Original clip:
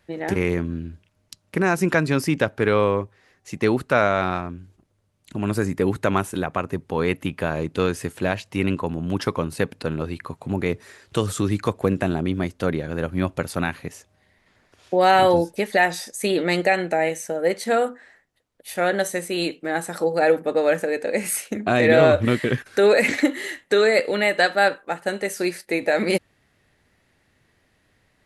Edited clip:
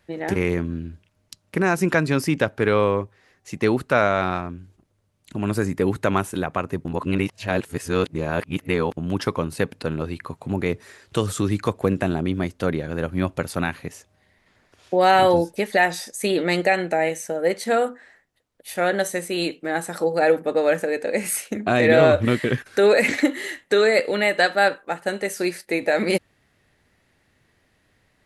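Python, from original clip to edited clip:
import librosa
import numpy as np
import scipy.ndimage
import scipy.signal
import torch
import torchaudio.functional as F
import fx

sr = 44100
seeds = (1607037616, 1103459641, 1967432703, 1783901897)

y = fx.edit(x, sr, fx.reverse_span(start_s=6.85, length_s=2.12), tone=tone)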